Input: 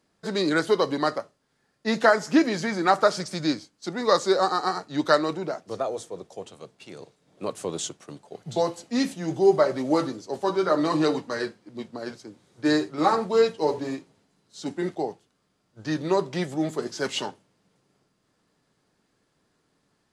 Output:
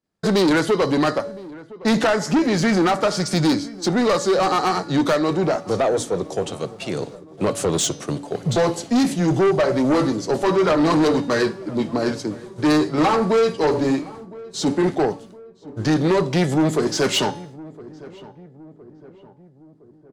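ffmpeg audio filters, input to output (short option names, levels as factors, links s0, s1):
-filter_complex "[0:a]bandreject=f=284.6:t=h:w=4,bandreject=f=569.2:t=h:w=4,bandreject=f=853.8:t=h:w=4,bandreject=f=1138.4:t=h:w=4,bandreject=f=1423:t=h:w=4,bandreject=f=1707.6:t=h:w=4,bandreject=f=1992.2:t=h:w=4,bandreject=f=2276.8:t=h:w=4,bandreject=f=2561.4:t=h:w=4,bandreject=f=2846:t=h:w=4,bandreject=f=3130.6:t=h:w=4,bandreject=f=3415.2:t=h:w=4,bandreject=f=3699.8:t=h:w=4,bandreject=f=3984.4:t=h:w=4,bandreject=f=4269:t=h:w=4,bandreject=f=4553.6:t=h:w=4,bandreject=f=4838.2:t=h:w=4,bandreject=f=5122.8:t=h:w=4,bandreject=f=5407.4:t=h:w=4,bandreject=f=5692:t=h:w=4,bandreject=f=5976.6:t=h:w=4,bandreject=f=6261.2:t=h:w=4,agate=range=0.0224:threshold=0.002:ratio=3:detection=peak,lowshelf=f=320:g=5.5,asplit=2[s0][s1];[s1]acompressor=threshold=0.0282:ratio=6,volume=1.12[s2];[s0][s2]amix=inputs=2:normalize=0,alimiter=limit=0.335:level=0:latency=1:release=356,acontrast=73,asoftclip=type=tanh:threshold=0.178,asplit=2[s3][s4];[s4]adelay=1013,lowpass=f=1100:p=1,volume=0.112,asplit=2[s5][s6];[s6]adelay=1013,lowpass=f=1100:p=1,volume=0.55,asplit=2[s7][s8];[s8]adelay=1013,lowpass=f=1100:p=1,volume=0.55,asplit=2[s9][s10];[s10]adelay=1013,lowpass=f=1100:p=1,volume=0.55,asplit=2[s11][s12];[s12]adelay=1013,lowpass=f=1100:p=1,volume=0.55[s13];[s5][s7][s9][s11][s13]amix=inputs=5:normalize=0[s14];[s3][s14]amix=inputs=2:normalize=0,volume=1.19"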